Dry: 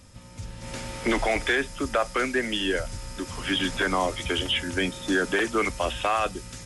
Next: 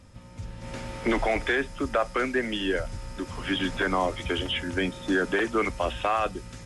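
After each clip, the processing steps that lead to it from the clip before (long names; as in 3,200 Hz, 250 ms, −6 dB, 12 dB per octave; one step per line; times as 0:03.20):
high-shelf EQ 3,800 Hz −10.5 dB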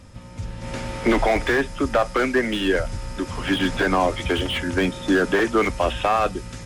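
slew-rate limiting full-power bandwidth 86 Hz
level +6.5 dB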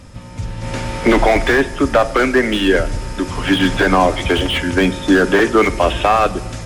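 convolution reverb RT60 1.5 s, pre-delay 7 ms, DRR 14.5 dB
level +6.5 dB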